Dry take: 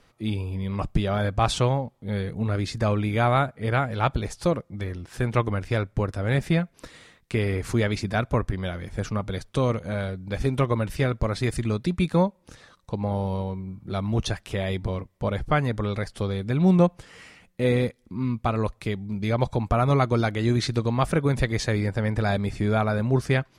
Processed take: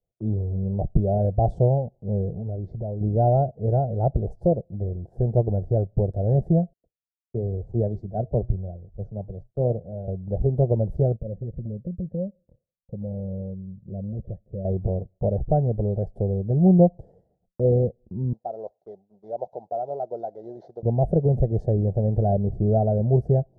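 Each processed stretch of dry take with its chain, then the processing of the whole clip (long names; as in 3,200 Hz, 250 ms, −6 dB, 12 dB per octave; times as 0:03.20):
0:02.32–0:03.01: low-pass filter 3,400 Hz + downward compressor 4 to 1, threshold −31 dBFS
0:06.73–0:10.08: flanger 1 Hz, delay 2.2 ms, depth 3.5 ms, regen −90% + high-frequency loss of the air 80 metres + multiband upward and downward expander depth 100%
0:11.16–0:14.65: low shelf with overshoot 330 Hz +12.5 dB, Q 1.5 + downward compressor 4 to 1, threshold −10 dBFS + formant resonators in series e
0:18.33–0:20.83: variable-slope delta modulation 32 kbit/s + high-pass filter 760 Hz
whole clip: elliptic low-pass filter 710 Hz, stop band 40 dB; downward expander −46 dBFS; parametric band 270 Hz −14 dB 0.42 octaves; level +5 dB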